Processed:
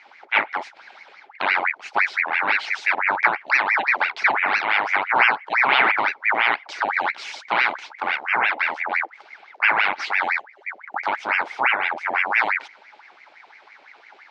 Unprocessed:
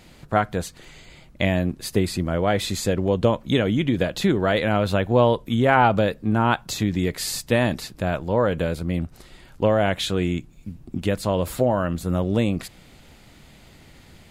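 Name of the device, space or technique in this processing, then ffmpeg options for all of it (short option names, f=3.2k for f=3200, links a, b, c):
voice changer toy: -af "aeval=exprs='val(0)*sin(2*PI*1300*n/s+1300*0.7/5.9*sin(2*PI*5.9*n/s))':c=same,highpass=420,equalizer=f=500:t=q:w=4:g=-5,equalizer=f=840:t=q:w=4:g=9,equalizer=f=1.5k:t=q:w=4:g=5,equalizer=f=2.2k:t=q:w=4:g=9,lowpass=f=4.9k:w=0.5412,lowpass=f=4.9k:w=1.3066,volume=-1.5dB"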